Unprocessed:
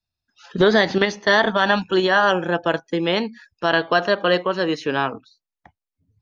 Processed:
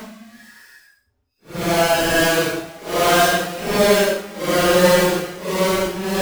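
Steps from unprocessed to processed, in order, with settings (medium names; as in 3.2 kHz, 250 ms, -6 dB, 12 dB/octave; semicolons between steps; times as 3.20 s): square wave that keeps the level; Paulstretch 4.7×, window 0.10 s, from 3.28 s; trim -3 dB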